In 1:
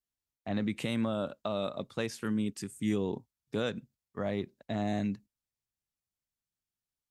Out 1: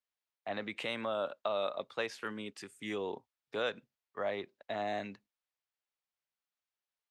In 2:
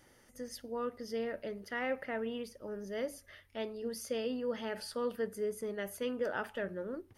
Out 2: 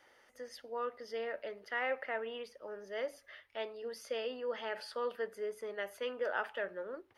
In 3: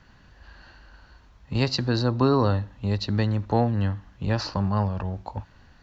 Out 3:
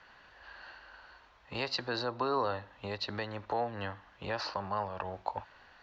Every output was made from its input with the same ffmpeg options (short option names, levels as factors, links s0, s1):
-filter_complex "[0:a]alimiter=limit=0.133:level=0:latency=1:release=346,acrossover=split=440 4400:gain=0.1 1 0.2[s0][s1][s2];[s0][s1][s2]amix=inputs=3:normalize=0,volume=1.33"